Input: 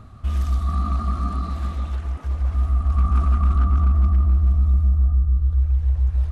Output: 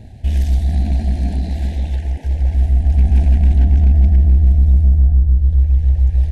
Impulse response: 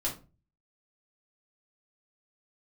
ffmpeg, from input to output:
-af "aeval=exprs='if(lt(val(0),0),0.708*val(0),val(0))':c=same,asuperstop=centerf=1200:order=8:qfactor=1.6,volume=7.5dB"

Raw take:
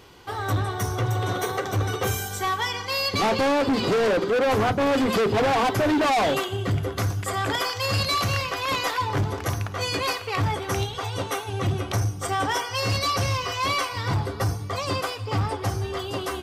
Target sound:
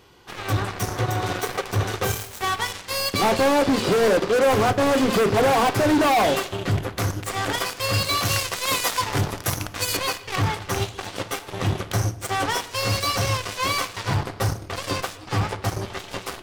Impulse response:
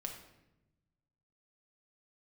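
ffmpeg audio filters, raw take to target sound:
-filter_complex "[0:a]aeval=exprs='0.119*(cos(1*acos(clip(val(0)/0.119,-1,1)))-cos(1*PI/2))+0.0376*(cos(3*acos(clip(val(0)/0.119,-1,1)))-cos(3*PI/2))+0.00944*(cos(7*acos(clip(val(0)/0.119,-1,1)))-cos(7*PI/2))':c=same,asettb=1/sr,asplit=3[a][b][c];[a]atrim=end=8.254[d];[b]atrim=start=8.25:end=9.97,asetpts=PTS-STARTPTS,afade=t=in:d=0.004:c=qsin,afade=t=out:st=1.716:d=0.004:c=qsin,aemphasis=mode=production:type=cd[e];[c]atrim=start=9.966[f];[d][e]acrossfade=d=0.004:c1=hsin:c2=qsin[g];[g][f]acrossfade=d=0.004:c1=qsin:c2=hsin,asplit=2[h][i];[1:a]atrim=start_sample=2205,afade=t=out:st=0.31:d=0.01,atrim=end_sample=14112[j];[i][j]afir=irnorm=-1:irlink=0,volume=-5.5dB[k];[h][k]amix=inputs=2:normalize=0"

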